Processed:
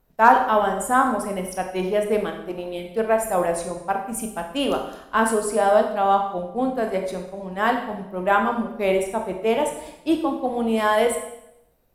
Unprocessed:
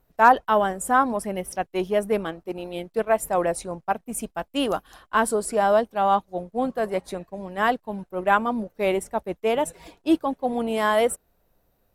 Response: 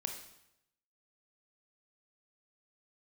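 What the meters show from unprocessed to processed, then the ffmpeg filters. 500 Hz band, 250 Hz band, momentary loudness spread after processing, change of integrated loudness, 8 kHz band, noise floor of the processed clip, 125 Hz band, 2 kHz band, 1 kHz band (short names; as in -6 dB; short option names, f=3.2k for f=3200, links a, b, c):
+2.0 dB, +2.0 dB, 10 LU, +1.5 dB, +1.5 dB, -53 dBFS, +2.0 dB, +1.5 dB, +1.5 dB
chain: -filter_complex "[1:a]atrim=start_sample=2205[a];[0:a][a]afir=irnorm=-1:irlink=0,volume=1.5dB"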